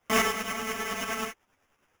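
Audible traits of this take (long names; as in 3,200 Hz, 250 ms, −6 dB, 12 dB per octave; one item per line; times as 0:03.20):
a quantiser's noise floor 12 bits, dither triangular
tremolo saw up 9.7 Hz, depth 60%
aliases and images of a low sample rate 4,200 Hz, jitter 0%
a shimmering, thickened sound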